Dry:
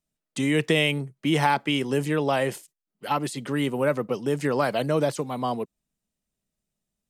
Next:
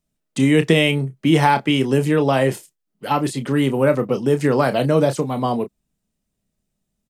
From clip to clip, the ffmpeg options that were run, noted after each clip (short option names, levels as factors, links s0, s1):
-filter_complex "[0:a]lowshelf=f=470:g=6,asplit=2[s0][s1];[s1]adelay=30,volume=0.316[s2];[s0][s2]amix=inputs=2:normalize=0,volume=1.5"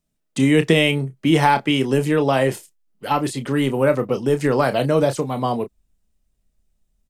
-af "asubboost=boost=6:cutoff=65"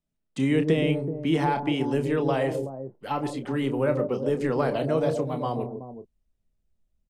-filter_complex "[0:a]lowpass=f=3900:p=1,acrossover=split=820[s0][s1];[s0]aecho=1:1:122|154|377:0.501|0.398|0.355[s2];[s1]alimiter=limit=0.158:level=0:latency=1:release=44[s3];[s2][s3]amix=inputs=2:normalize=0,volume=0.422"